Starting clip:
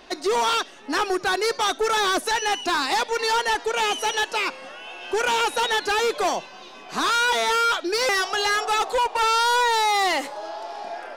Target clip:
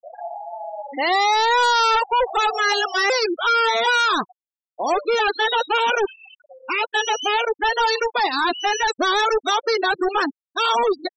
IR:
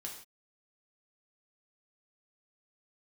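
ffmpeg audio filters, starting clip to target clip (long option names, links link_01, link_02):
-af "areverse,aeval=exprs='val(0)+0.00631*sin(2*PI*7700*n/s)':channel_layout=same,afftfilt=real='re*gte(hypot(re,im),0.0794)':imag='im*gte(hypot(re,im),0.0794)':win_size=1024:overlap=0.75,volume=3dB"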